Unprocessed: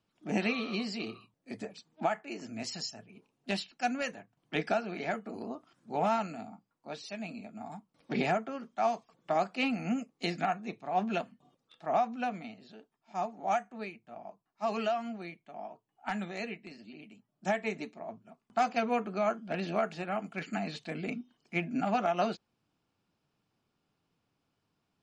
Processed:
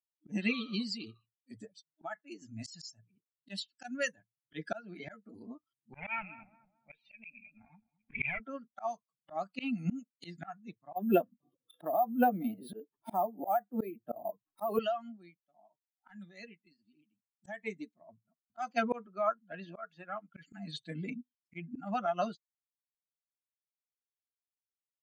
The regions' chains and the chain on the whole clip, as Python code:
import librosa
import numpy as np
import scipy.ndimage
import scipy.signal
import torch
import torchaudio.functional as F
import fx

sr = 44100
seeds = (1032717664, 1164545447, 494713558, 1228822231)

y = fx.chain(x, sr, fx.tube_stage(drive_db=29.0, bias=0.8),
    fx.lowpass_res(hz=2400.0, q=9.9),
    fx.echo_filtered(ms=216, feedback_pct=60, hz=1600.0, wet_db=-11.0), at=(5.93, 8.4))
y = fx.chain(y, sr, fx.peak_eq(hz=410.0, db=11.0, octaves=2.0),
    fx.resample_bad(factor=3, down='filtered', up='hold'),
    fx.band_squash(depth_pct=100), at=(10.96, 14.79))
y = fx.chain(y, sr, fx.lowpass(hz=3000.0, slope=6),
    fx.low_shelf(hz=330.0, db=-8.5), at=(19.07, 20.35))
y = fx.bin_expand(y, sr, power=2.0)
y = fx.auto_swell(y, sr, attack_ms=252.0)
y = fx.rider(y, sr, range_db=4, speed_s=2.0)
y = y * librosa.db_to_amplitude(6.0)